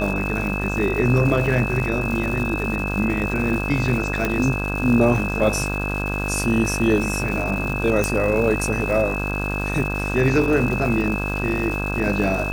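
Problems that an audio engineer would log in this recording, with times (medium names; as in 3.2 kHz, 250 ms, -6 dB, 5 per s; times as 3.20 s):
buzz 50 Hz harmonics 33 -26 dBFS
crackle 460 per s -29 dBFS
whine 2.6 kHz -27 dBFS
4.25 s: pop -8 dBFS
8.04 s: pop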